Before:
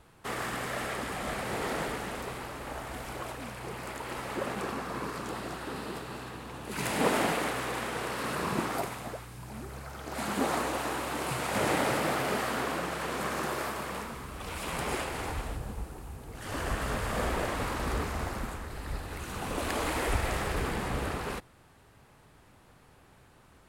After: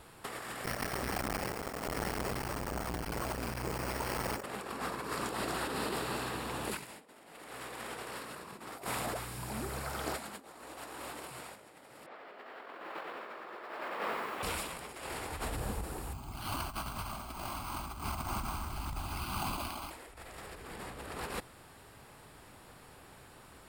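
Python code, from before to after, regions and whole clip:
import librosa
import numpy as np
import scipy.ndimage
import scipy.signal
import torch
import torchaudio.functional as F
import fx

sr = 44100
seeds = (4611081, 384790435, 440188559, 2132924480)

y = fx.chain(x, sr, fx.low_shelf(hz=130.0, db=12.0),
    fx.resample_bad(factor=6, down='filtered', up='hold'),
    fx.transformer_sat(knee_hz=660.0), at=(0.64, 4.43))
y = fx.chain(y, sr, fx.bandpass_edges(low_hz=360.0, high_hz=3100.0),
    fx.air_absorb(metres=94.0),
    fx.echo_crushed(ms=93, feedback_pct=55, bits=10, wet_db=-3.5), at=(12.06, 14.43))
y = fx.chain(y, sr, fx.fixed_phaser(hz=1800.0, stages=6),
    fx.resample_bad(factor=6, down='filtered', up='hold'), at=(16.13, 19.91))
y = fx.bass_treble(y, sr, bass_db=-4, treble_db=4)
y = fx.notch(y, sr, hz=6200.0, q=6.9)
y = fx.over_compress(y, sr, threshold_db=-39.0, ratio=-0.5)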